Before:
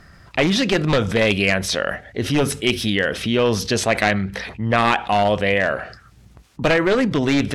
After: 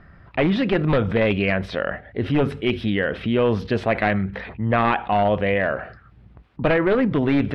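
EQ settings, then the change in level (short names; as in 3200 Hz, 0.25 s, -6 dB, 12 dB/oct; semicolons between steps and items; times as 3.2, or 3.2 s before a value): air absorption 450 m; 0.0 dB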